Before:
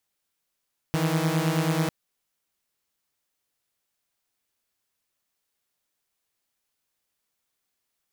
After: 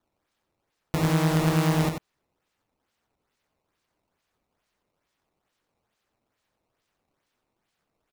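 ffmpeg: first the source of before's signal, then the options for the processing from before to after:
-f lavfi -i "aevalsrc='0.075*((2*mod(155.56*t,1)-1)+(2*mod(164.81*t,1)-1))':d=0.95:s=44100"
-af "acrusher=samples=16:mix=1:aa=0.000001:lfo=1:lforange=25.6:lforate=2.3,aecho=1:1:90:0.473"

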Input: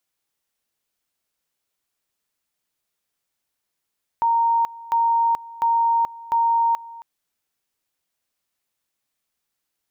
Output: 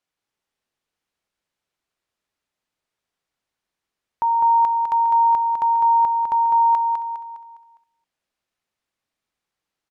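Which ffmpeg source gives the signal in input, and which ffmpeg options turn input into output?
-f lavfi -i "aevalsrc='pow(10,(-15.5-20*gte(mod(t,0.7),0.43))/20)*sin(2*PI*926*t)':d=2.8:s=44100"
-filter_complex "[0:a]aemphasis=mode=reproduction:type=50fm,asplit=2[a][b];[b]aecho=0:1:204|408|612|816|1020:0.562|0.236|0.0992|0.0417|0.0175[c];[a][c]amix=inputs=2:normalize=0"

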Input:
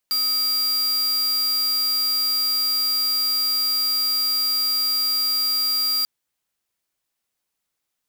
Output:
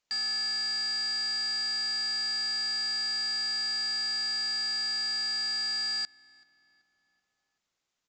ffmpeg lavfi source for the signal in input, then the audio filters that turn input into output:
-f lavfi -i "aevalsrc='0.0841*(2*lt(mod(4760*t,1),0.5)-1)':d=5.94:s=44100"
-filter_complex "[0:a]aresample=16000,asoftclip=type=hard:threshold=-30dB,aresample=44100,asplit=2[a][b];[b]adelay=382,lowpass=f=2.7k:p=1,volume=-22dB,asplit=2[c][d];[d]adelay=382,lowpass=f=2.7k:p=1,volume=0.54,asplit=2[e][f];[f]adelay=382,lowpass=f=2.7k:p=1,volume=0.54,asplit=2[g][h];[h]adelay=382,lowpass=f=2.7k:p=1,volume=0.54[i];[a][c][e][g][i]amix=inputs=5:normalize=0"

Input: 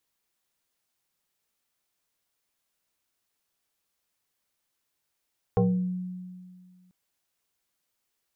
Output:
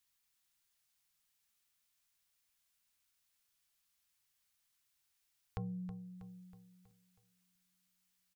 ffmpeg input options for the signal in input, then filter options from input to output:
-f lavfi -i "aevalsrc='0.133*pow(10,-3*t/1.99)*sin(2*PI*182*t+1.9*pow(10,-3*t/0.52)*sin(2*PI*1.63*182*t))':d=1.34:s=44100"
-filter_complex "[0:a]equalizer=f=420:w=0.59:g=-14.5,acompressor=threshold=-47dB:ratio=2,asplit=2[a][b];[b]aecho=0:1:321|642|963|1284|1605:0.282|0.144|0.0733|0.0374|0.0191[c];[a][c]amix=inputs=2:normalize=0"

